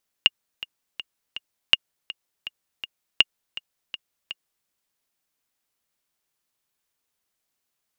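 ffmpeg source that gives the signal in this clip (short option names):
-f lavfi -i "aevalsrc='pow(10,(-1-17.5*gte(mod(t,4*60/163),60/163))/20)*sin(2*PI*2840*mod(t,60/163))*exp(-6.91*mod(t,60/163)/0.03)':d=4.41:s=44100"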